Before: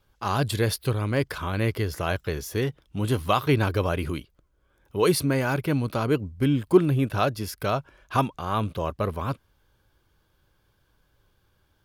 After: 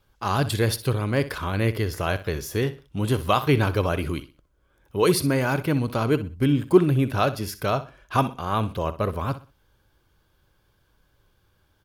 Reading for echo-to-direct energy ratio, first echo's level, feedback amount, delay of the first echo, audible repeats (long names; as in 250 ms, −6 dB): −14.0 dB, −14.5 dB, 29%, 62 ms, 2